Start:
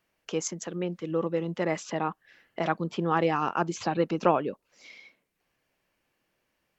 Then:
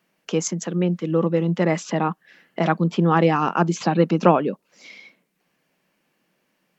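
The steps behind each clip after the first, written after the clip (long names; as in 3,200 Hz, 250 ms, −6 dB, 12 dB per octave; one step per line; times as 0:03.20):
low shelf with overshoot 120 Hz −12.5 dB, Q 3
level +6 dB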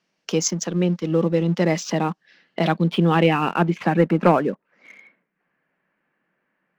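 low-pass filter sweep 5,500 Hz → 1,700 Hz, 0:02.11–0:04.18
leveller curve on the samples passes 1
dynamic equaliser 1,200 Hz, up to −5 dB, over −29 dBFS, Q 1.5
level −3 dB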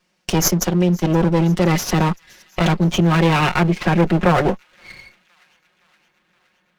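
lower of the sound and its delayed copy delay 5.5 ms
in parallel at 0 dB: compressor whose output falls as the input rises −23 dBFS, ratio −1
on the sum: delay with a high-pass on its return 518 ms, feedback 63%, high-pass 2,300 Hz, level −24 dB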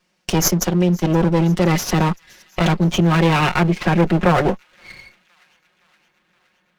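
no processing that can be heard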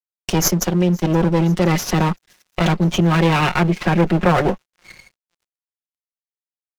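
dead-zone distortion −46 dBFS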